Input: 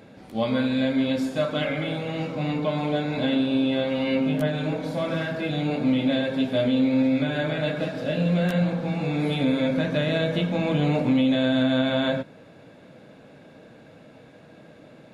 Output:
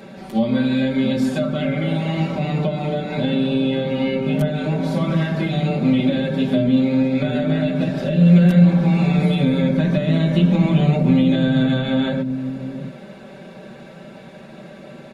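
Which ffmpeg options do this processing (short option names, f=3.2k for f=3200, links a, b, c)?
-filter_complex "[0:a]bandreject=f=50:t=h:w=6,bandreject=f=100:t=h:w=6,bandreject=f=150:t=h:w=6,aecho=1:1:5.2:0.93,acrossover=split=340[a][b];[a]aecho=1:1:676:0.531[c];[b]acompressor=threshold=-33dB:ratio=6[d];[c][d]amix=inputs=2:normalize=0,volume=7dB"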